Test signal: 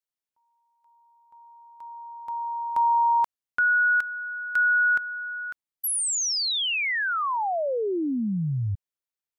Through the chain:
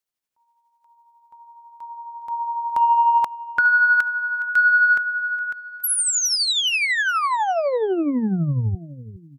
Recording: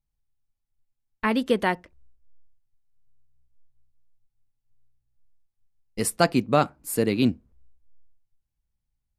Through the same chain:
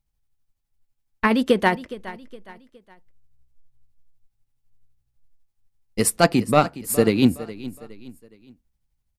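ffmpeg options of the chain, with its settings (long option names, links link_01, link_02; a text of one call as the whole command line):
ffmpeg -i in.wav -af "acontrast=81,aecho=1:1:415|830|1245:0.15|0.0584|0.0228,tremolo=f=12:d=0.44" out.wav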